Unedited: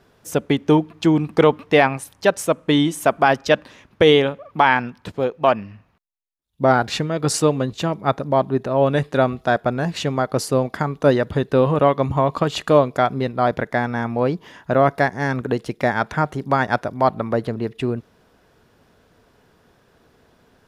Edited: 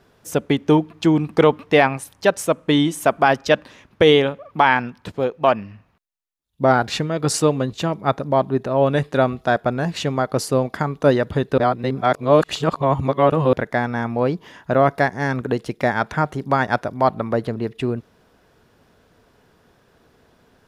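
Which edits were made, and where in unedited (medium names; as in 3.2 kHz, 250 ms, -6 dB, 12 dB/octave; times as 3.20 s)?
11.58–13.53 s: reverse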